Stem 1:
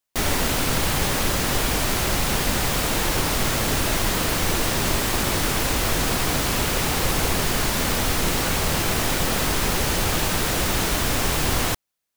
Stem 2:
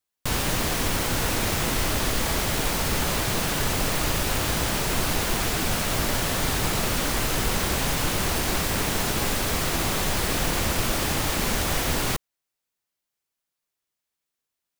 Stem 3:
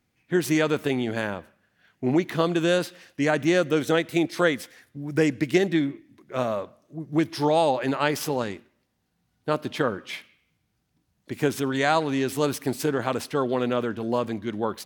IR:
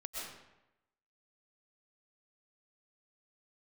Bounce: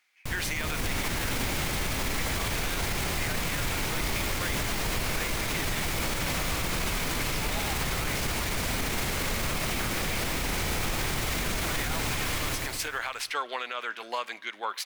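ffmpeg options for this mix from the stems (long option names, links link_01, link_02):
-filter_complex "[0:a]alimiter=limit=-13.5dB:level=0:latency=1:release=361,adelay=700,volume=-1dB,asplit=2[link_01][link_02];[link_02]volume=-5dB[link_03];[1:a]lowshelf=frequency=180:gain=7,dynaudnorm=framelen=410:gausssize=3:maxgain=11dB,volume=-12dB[link_04];[2:a]acontrast=52,highpass=1100,volume=-4.5dB[link_05];[link_01][link_05]amix=inputs=2:normalize=0,equalizer=frequency=2600:width=0.33:gain=6,alimiter=limit=-19.5dB:level=0:latency=1:release=262,volume=0dB[link_06];[link_03]aecho=0:1:108|216|324|432|540|648|756|864|972:1|0.59|0.348|0.205|0.121|0.0715|0.0422|0.0249|0.0147[link_07];[link_04][link_06][link_07]amix=inputs=3:normalize=0,equalizer=frequency=2200:width_type=o:width=0.31:gain=5,alimiter=limit=-20dB:level=0:latency=1:release=62"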